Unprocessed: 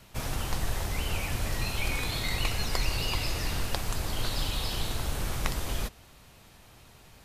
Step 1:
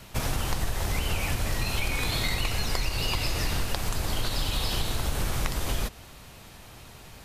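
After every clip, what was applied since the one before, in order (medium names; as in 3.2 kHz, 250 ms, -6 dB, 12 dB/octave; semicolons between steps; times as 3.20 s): compression, threshold -30 dBFS, peak gain reduction 9.5 dB; trim +7 dB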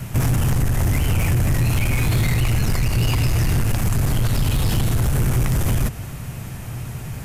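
graphic EQ 125/500/1000/4000 Hz +12/-3/-4/-11 dB; in parallel at +2.5 dB: peak limiter -22.5 dBFS, peak gain reduction 10 dB; on the sum: saturation -19 dBFS, distortion -13 dB; trim +5.5 dB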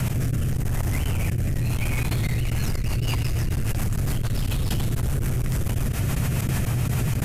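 rotary cabinet horn 0.9 Hz, later 7 Hz, at 2.30 s; trance gate "x...xxx.x" 185 bpm -24 dB; level flattener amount 100%; trim -6.5 dB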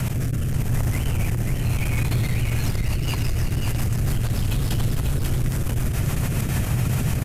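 delay 540 ms -5 dB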